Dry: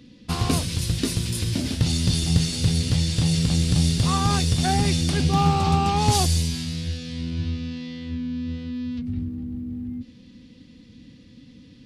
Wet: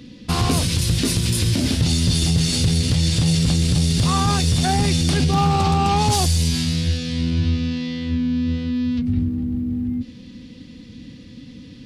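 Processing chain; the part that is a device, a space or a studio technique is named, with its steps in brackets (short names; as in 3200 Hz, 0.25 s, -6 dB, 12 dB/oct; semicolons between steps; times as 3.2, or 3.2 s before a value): soft clipper into limiter (soft clip -10 dBFS, distortion -24 dB; limiter -18.5 dBFS, peak gain reduction 7.5 dB); gain +8 dB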